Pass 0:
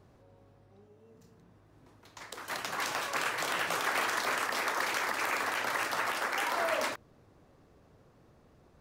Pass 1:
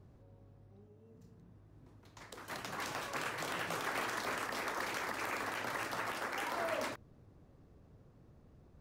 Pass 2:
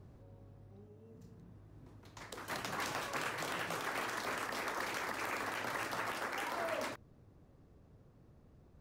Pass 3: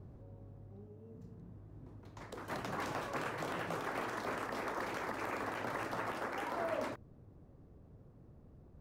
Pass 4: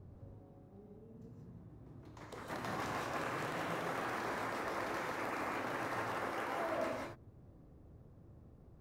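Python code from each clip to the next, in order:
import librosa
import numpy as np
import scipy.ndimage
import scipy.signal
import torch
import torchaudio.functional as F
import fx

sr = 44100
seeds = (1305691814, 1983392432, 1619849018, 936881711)

y1 = fx.low_shelf(x, sr, hz=320.0, db=12.0)
y1 = y1 * librosa.db_to_amplitude(-8.0)
y2 = fx.rider(y1, sr, range_db=3, speed_s=0.5)
y3 = fx.tilt_shelf(y2, sr, db=6.0, hz=1500.0)
y3 = y3 * librosa.db_to_amplitude(-2.0)
y4 = fx.rev_gated(y3, sr, seeds[0], gate_ms=210, shape='rising', drr_db=-0.5)
y4 = y4 * librosa.db_to_amplitude(-3.0)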